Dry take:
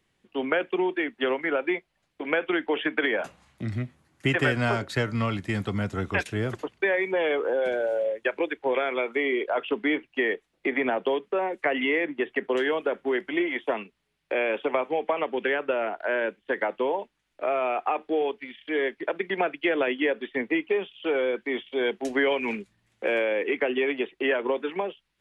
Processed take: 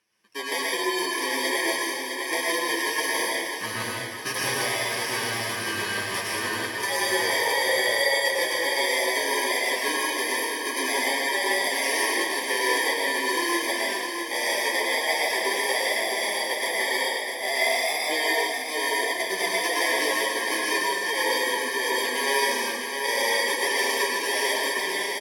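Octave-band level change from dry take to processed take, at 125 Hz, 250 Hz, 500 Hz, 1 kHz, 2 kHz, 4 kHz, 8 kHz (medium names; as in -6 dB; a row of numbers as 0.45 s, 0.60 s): -11.5 dB, -5.5 dB, -3.0 dB, +4.5 dB, +5.5 dB, +12.0 dB, no reading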